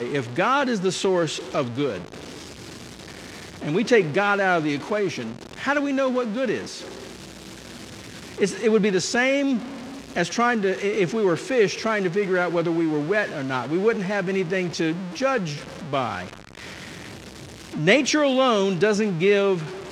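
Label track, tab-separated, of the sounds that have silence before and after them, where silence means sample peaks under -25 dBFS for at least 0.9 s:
3.630000	6.620000	sound
8.400000	16.240000	sound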